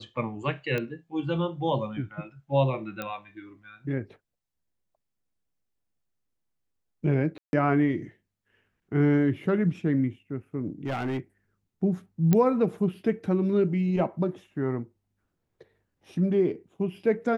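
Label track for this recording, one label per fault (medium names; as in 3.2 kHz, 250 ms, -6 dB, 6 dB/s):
0.780000	0.780000	pop -17 dBFS
3.020000	3.020000	pop -18 dBFS
7.380000	7.530000	dropout 151 ms
10.860000	11.200000	clipped -25.5 dBFS
12.330000	12.330000	pop -10 dBFS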